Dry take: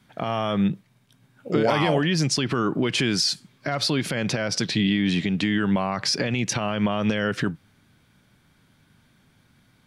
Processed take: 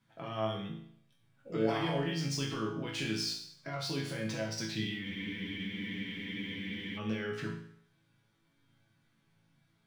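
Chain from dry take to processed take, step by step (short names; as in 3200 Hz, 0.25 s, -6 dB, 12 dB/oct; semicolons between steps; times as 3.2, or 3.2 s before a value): median filter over 3 samples; resonator bank A2 major, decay 0.63 s; spectral freeze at 5.06, 1.91 s; gain +5.5 dB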